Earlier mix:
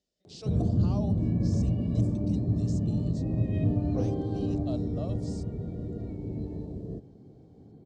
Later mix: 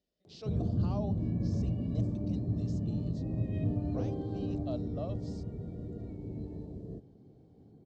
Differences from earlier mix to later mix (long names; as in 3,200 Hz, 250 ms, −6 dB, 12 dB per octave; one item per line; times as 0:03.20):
speech: add high-frequency loss of the air 140 metres
background −5.5 dB